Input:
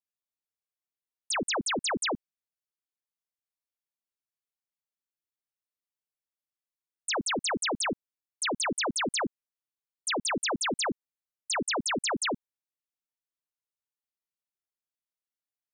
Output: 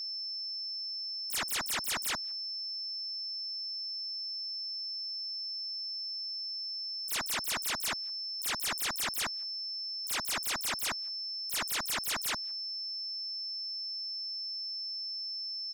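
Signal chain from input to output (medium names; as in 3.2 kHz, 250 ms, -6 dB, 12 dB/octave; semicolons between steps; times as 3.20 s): whistle 5.3 kHz -49 dBFS; sine folder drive 14 dB, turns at -25 dBFS; speakerphone echo 170 ms, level -28 dB; trim -4 dB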